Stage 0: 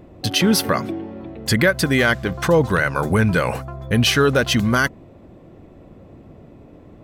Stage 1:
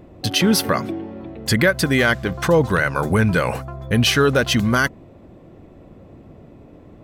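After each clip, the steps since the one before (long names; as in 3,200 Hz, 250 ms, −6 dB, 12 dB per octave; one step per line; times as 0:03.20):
no processing that can be heard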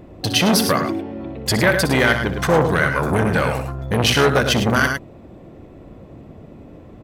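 loudspeakers that aren't time-aligned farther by 21 metres −11 dB, 36 metres −8 dB
saturating transformer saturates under 860 Hz
level +2.5 dB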